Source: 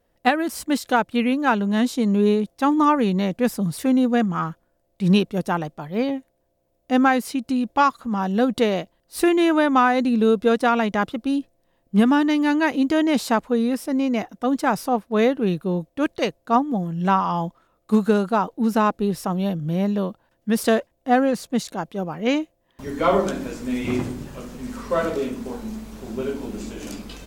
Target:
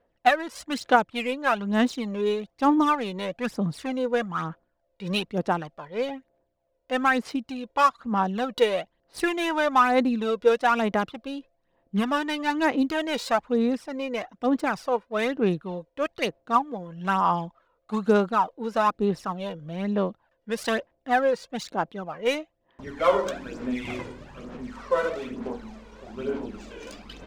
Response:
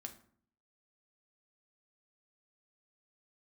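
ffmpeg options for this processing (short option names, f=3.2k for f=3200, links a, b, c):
-af "lowshelf=f=330:g=-11,adynamicsmooth=sensitivity=5.5:basefreq=3.3k,aphaser=in_gain=1:out_gain=1:delay=2.1:decay=0.58:speed=1.1:type=sinusoidal,volume=-2.5dB"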